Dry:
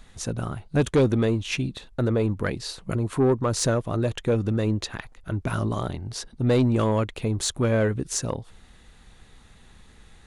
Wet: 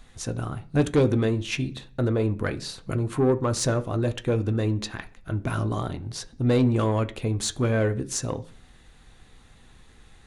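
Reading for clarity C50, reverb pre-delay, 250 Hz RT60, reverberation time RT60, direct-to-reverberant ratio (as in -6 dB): 18.5 dB, 3 ms, 0.70 s, 0.45 s, 8.0 dB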